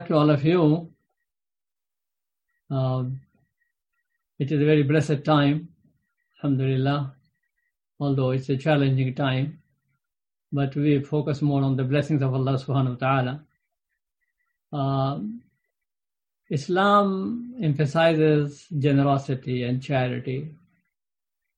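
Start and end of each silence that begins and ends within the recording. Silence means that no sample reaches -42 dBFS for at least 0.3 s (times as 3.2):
0.88–2.7
3.19–4.4
5.67–6.42
7.11–8
9.55–10.52
13.4–14.72
15.38–16.5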